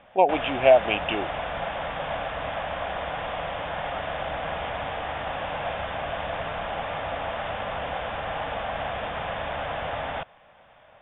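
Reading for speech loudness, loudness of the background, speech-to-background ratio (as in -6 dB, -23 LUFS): -22.0 LUFS, -31.0 LUFS, 9.0 dB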